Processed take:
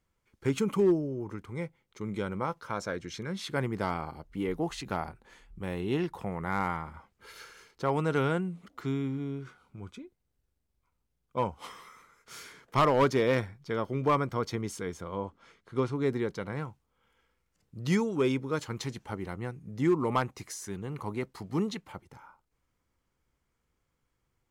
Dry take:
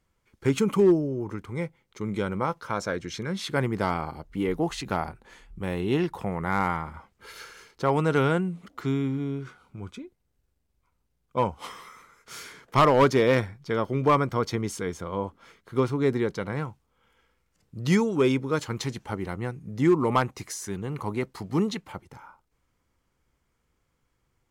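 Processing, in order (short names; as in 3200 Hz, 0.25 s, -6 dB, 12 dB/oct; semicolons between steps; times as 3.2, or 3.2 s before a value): 15.17–15.93 LPF 9000 Hz 12 dB/oct; gain -5 dB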